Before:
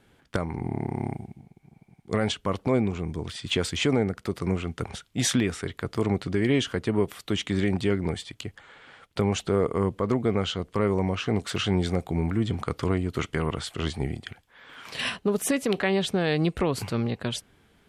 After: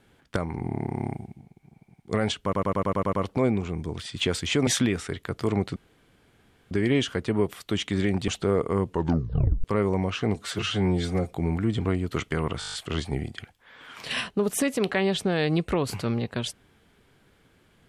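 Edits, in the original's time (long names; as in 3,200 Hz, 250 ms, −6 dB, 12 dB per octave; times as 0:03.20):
0:02.43: stutter 0.10 s, 8 plays
0:03.97–0:05.21: remove
0:06.30: splice in room tone 0.95 s
0:07.87–0:09.33: remove
0:09.92: tape stop 0.77 s
0:11.40–0:12.05: time-stretch 1.5×
0:12.58–0:12.88: remove
0:13.62: stutter 0.02 s, 8 plays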